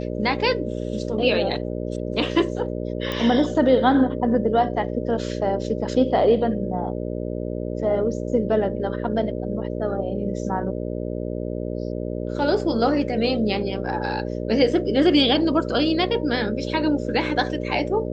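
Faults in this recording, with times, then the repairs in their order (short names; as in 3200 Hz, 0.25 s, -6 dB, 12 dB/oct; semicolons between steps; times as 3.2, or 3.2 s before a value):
buzz 60 Hz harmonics 10 -28 dBFS
3.12 pop -13 dBFS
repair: de-click; de-hum 60 Hz, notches 10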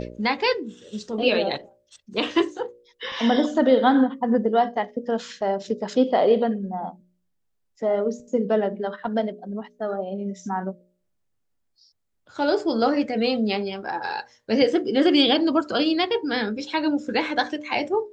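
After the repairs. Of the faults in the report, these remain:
none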